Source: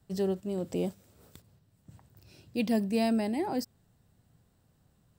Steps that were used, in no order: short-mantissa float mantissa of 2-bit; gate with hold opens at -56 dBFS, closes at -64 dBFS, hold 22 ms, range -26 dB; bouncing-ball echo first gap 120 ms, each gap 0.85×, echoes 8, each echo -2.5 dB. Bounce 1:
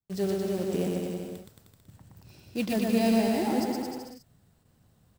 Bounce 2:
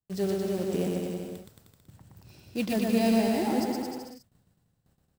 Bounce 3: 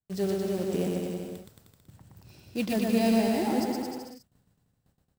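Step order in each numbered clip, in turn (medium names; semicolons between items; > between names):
short-mantissa float > bouncing-ball echo > gate with hold; gate with hold > short-mantissa float > bouncing-ball echo; short-mantissa float > gate with hold > bouncing-ball echo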